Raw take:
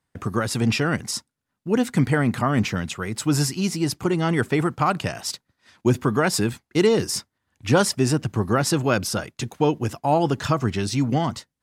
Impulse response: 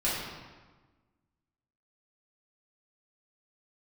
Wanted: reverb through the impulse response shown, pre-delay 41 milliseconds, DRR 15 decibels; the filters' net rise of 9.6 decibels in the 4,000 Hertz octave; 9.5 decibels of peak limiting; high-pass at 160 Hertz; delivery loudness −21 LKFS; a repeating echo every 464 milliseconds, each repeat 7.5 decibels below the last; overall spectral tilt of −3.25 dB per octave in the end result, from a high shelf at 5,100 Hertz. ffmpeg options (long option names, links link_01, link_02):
-filter_complex "[0:a]highpass=160,equalizer=frequency=4000:width_type=o:gain=8,highshelf=frequency=5100:gain=9,alimiter=limit=-10dB:level=0:latency=1,aecho=1:1:464|928|1392|1856|2320:0.422|0.177|0.0744|0.0312|0.0131,asplit=2[link_01][link_02];[1:a]atrim=start_sample=2205,adelay=41[link_03];[link_02][link_03]afir=irnorm=-1:irlink=0,volume=-24.5dB[link_04];[link_01][link_04]amix=inputs=2:normalize=0,volume=1dB"